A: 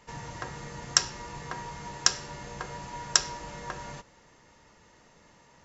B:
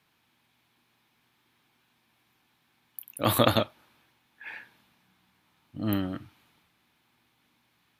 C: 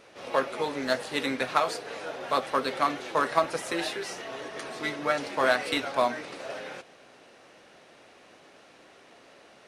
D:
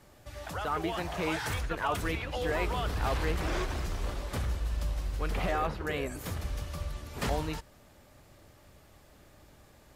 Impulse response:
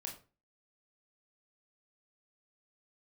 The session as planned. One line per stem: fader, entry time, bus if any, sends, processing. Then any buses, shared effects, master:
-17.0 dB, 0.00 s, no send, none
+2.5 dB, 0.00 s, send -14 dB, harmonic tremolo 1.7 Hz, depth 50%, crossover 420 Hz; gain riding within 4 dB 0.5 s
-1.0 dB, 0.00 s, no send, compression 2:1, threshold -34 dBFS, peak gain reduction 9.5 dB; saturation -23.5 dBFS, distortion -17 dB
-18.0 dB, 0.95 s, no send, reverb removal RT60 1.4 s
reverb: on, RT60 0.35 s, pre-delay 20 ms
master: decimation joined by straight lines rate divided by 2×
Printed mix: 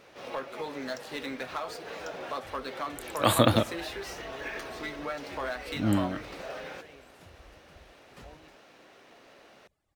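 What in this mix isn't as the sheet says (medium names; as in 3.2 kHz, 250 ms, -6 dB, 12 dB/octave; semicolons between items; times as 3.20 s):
stem A -17.0 dB -> -27.5 dB; stem B: missing gain riding within 4 dB 0.5 s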